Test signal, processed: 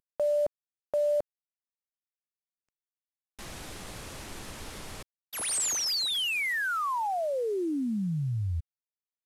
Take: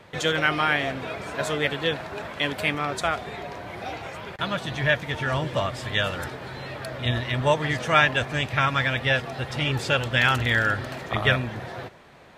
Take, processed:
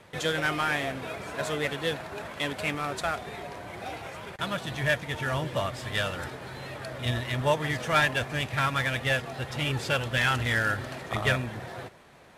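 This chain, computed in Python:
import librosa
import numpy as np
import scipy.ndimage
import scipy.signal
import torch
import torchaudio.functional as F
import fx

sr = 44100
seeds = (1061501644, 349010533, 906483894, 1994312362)

y = fx.cvsd(x, sr, bps=64000)
y = F.gain(torch.from_numpy(y), -3.5).numpy()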